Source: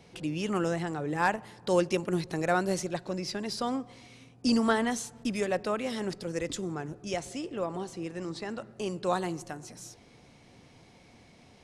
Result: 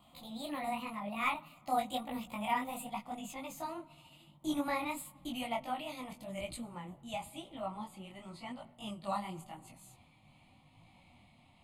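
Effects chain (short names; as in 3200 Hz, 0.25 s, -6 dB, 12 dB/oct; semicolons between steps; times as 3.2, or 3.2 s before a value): gliding pitch shift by +6.5 st ending unshifted; fixed phaser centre 1600 Hz, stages 6; detuned doubles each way 32 cents; gain +1 dB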